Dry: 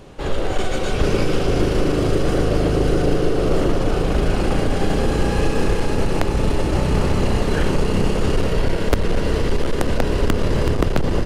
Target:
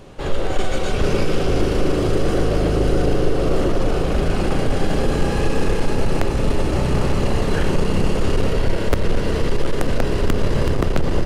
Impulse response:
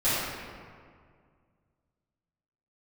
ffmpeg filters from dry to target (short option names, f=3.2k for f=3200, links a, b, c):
-filter_complex "[0:a]acontrast=42,asplit=2[a][b];[1:a]atrim=start_sample=2205[c];[b][c]afir=irnorm=-1:irlink=0,volume=-26dB[d];[a][d]amix=inputs=2:normalize=0,volume=-6dB"